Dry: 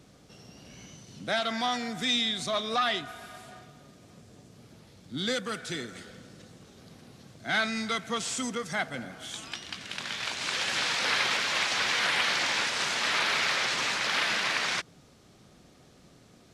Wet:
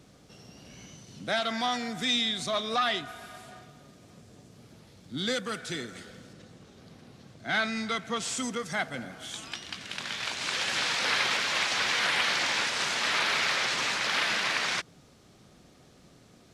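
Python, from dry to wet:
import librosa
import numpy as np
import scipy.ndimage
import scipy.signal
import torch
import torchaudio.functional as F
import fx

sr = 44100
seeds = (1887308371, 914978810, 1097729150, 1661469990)

y = fx.high_shelf(x, sr, hz=7000.0, db=-8.0, at=(6.33, 8.22))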